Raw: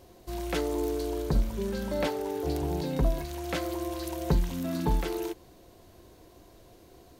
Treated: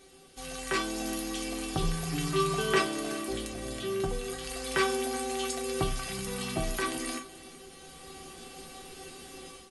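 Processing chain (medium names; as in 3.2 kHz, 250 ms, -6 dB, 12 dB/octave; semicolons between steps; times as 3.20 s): tilt EQ +4.5 dB/octave; small resonant body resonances 220/1600 Hz, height 7 dB, ringing for 85 ms; in parallel at +1 dB: compression, threshold -34 dBFS, peak gain reduction 11 dB; on the sum: bass shelf 170 Hz +10.5 dB; on a send at -11.5 dB: reverberation RT60 0.40 s, pre-delay 4 ms; on the sum: level rider gain up to 10.5 dB; low-pass 3.1 kHz 6 dB/octave; feedback comb 520 Hz, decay 0.16 s, harmonics all, mix 90%; delay 278 ms -17.5 dB; speed mistake 45 rpm record played at 33 rpm; trim +6 dB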